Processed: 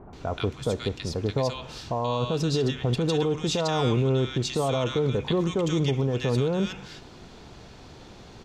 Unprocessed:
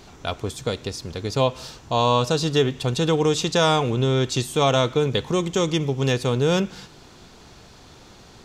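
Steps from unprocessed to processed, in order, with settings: low-pass 3.1 kHz 6 dB/octave; peak limiter -17.5 dBFS, peak gain reduction 10 dB; bands offset in time lows, highs 130 ms, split 1.3 kHz; trim +2 dB

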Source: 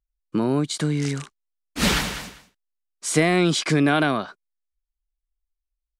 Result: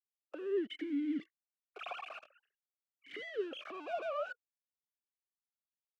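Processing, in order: formants replaced by sine waves; bass shelf 350 Hz +6.5 dB; waveshaping leveller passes 5; peak limiter -16.5 dBFS, peak gain reduction 14 dB; compression 6:1, threshold -34 dBFS, peak gain reduction 14.5 dB; valve stage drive 36 dB, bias 0.3; talking filter a-i 0.51 Hz; trim +8 dB

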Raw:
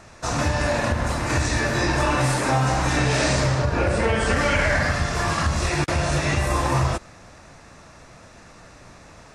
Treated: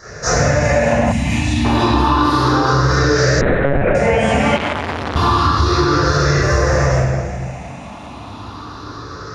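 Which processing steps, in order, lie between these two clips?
drifting ripple filter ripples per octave 0.56, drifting +0.31 Hz, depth 14 dB; bass shelf 350 Hz -7.5 dB; reverberation RT60 1.1 s, pre-delay 17 ms, DRR -11.5 dB; 3.41–3.95 s: monotone LPC vocoder at 8 kHz 140 Hz; compression, threshold -8 dBFS, peak gain reduction 10.5 dB; 1.12–1.65 s: high-order bell 720 Hz -13.5 dB 2.3 oct; 4.56–5.16 s: transformer saturation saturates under 1.5 kHz; trim -3 dB

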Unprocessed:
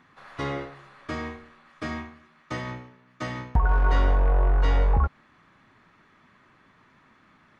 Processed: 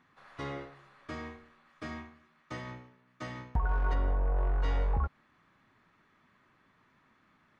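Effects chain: 3.93–4.36 s: low-pass 1 kHz -> 1.5 kHz 6 dB/octave; trim -8.5 dB

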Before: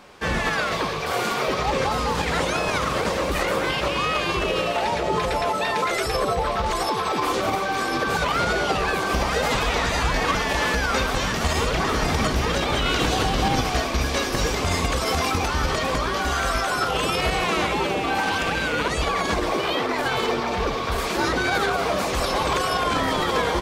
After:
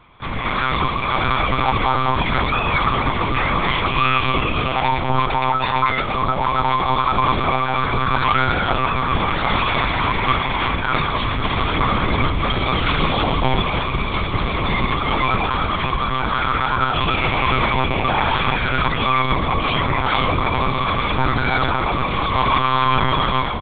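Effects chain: resonant low shelf 120 Hz -8 dB, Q 1.5; comb 0.9 ms, depth 78%; level rider; monotone LPC vocoder at 8 kHz 130 Hz; trim -4 dB

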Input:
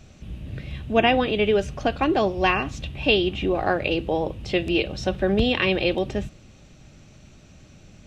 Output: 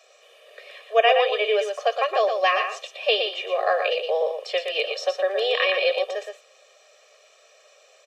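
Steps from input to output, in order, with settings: steep high-pass 430 Hz 72 dB/octave; comb 1.7 ms, depth 96%; delay 118 ms -6 dB; trim -2 dB

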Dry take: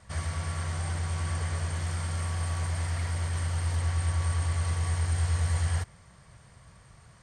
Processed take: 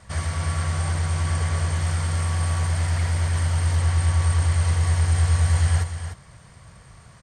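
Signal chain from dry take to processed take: delay 300 ms -9 dB; trim +6 dB

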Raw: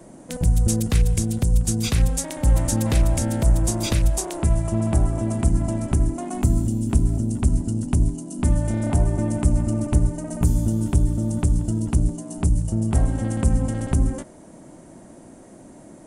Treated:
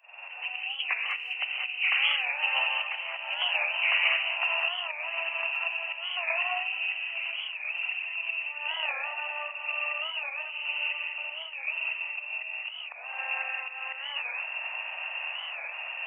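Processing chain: knee-point frequency compression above 1.8 kHz 4:1; dynamic bell 2 kHz, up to -4 dB, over -40 dBFS, Q 4.1; in parallel at -1 dB: upward compressor, threshold -20 dBFS; on the sum: steep high-pass 770 Hz 36 dB/octave; tilt EQ +1.5 dB/octave; feedback echo behind a high-pass 1112 ms, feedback 76%, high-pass 1.5 kHz, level -11 dB; slow attack 280 ms; gated-style reverb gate 230 ms rising, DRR -0.5 dB; flange 0.25 Hz, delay 9.2 ms, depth 8.3 ms, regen +86%; warped record 45 rpm, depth 160 cents

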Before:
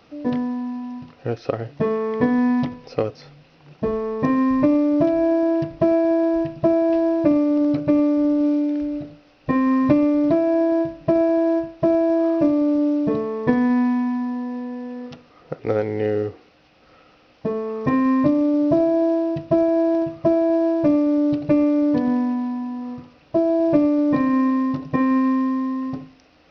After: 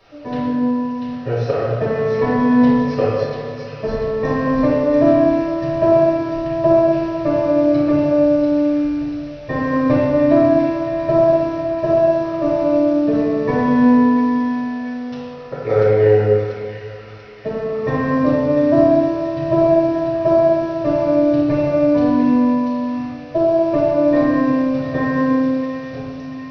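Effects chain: graphic EQ with 31 bands 200 Hz -12 dB, 315 Hz -11 dB, 1.6 kHz +3 dB; feedback echo behind a high-pass 690 ms, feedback 56%, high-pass 2.4 kHz, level -3.5 dB; reverberation RT60 2.3 s, pre-delay 5 ms, DRR -9.5 dB; trim -6.5 dB

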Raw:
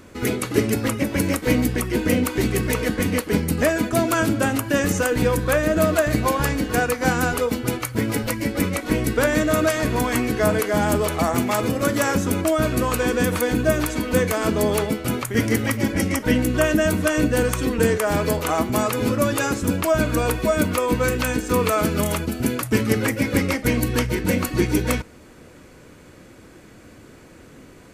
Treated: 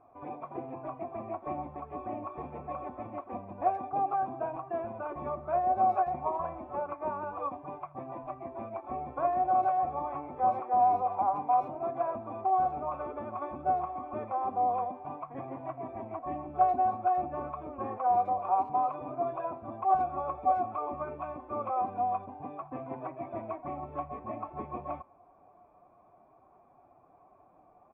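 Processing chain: formant-preserving pitch shift +3 st; cascade formant filter a; speakerphone echo 80 ms, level -24 dB; trim +3.5 dB

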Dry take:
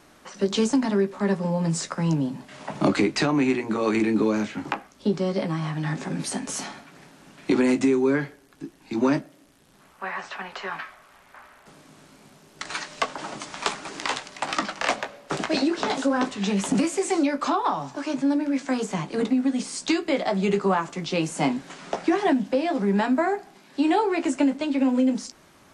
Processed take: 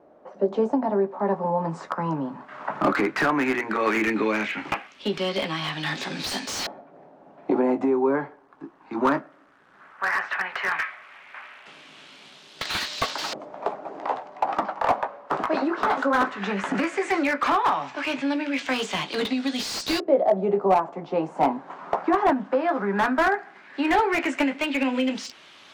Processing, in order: LFO low-pass saw up 0.15 Hz 570–4600 Hz; RIAA curve recording; slew-rate limiter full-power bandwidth 130 Hz; trim +2 dB

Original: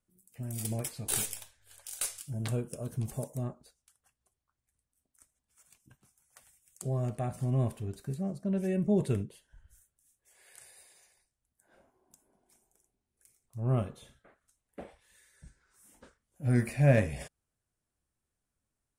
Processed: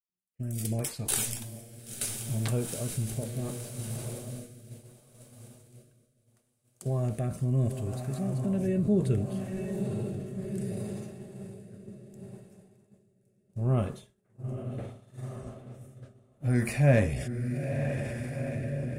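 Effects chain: echo that smears into a reverb 913 ms, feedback 62%, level -7 dB; rotary cabinet horn 0.7 Hz; expander -40 dBFS; transient shaper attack 0 dB, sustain +4 dB; in parallel at -1 dB: compression, threshold -35 dBFS, peak gain reduction 16.5 dB

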